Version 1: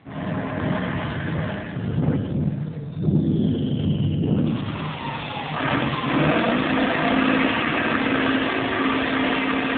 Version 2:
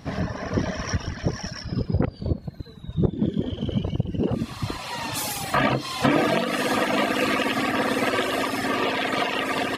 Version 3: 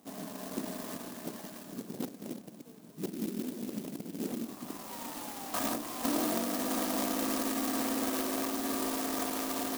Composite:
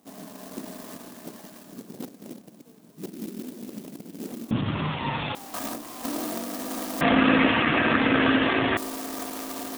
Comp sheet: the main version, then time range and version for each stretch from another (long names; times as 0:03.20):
3
0:04.51–0:05.35: punch in from 1
0:07.01–0:08.77: punch in from 1
not used: 2